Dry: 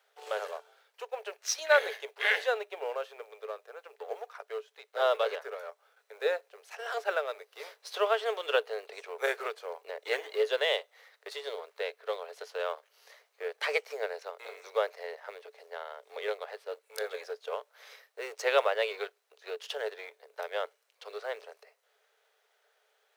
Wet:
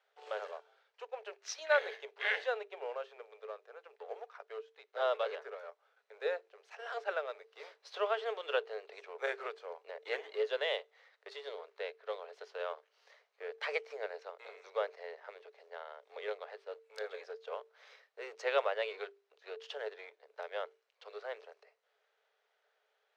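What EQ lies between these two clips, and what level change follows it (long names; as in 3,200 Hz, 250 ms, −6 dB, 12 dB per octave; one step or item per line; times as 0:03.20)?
high-frequency loss of the air 160 metres
high-shelf EQ 8,200 Hz +9.5 dB
mains-hum notches 50/100/150/200/250/300/350/400/450 Hz
−5.0 dB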